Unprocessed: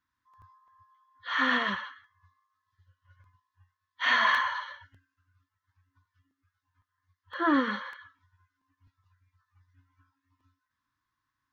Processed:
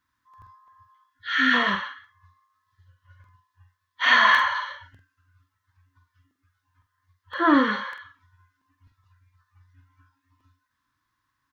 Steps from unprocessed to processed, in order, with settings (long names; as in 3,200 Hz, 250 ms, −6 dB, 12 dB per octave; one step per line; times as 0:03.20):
gain on a spectral selection 0:01.08–0:01.54, 350–1,300 Hz −17 dB
double-tracking delay 46 ms −8 dB
level +6 dB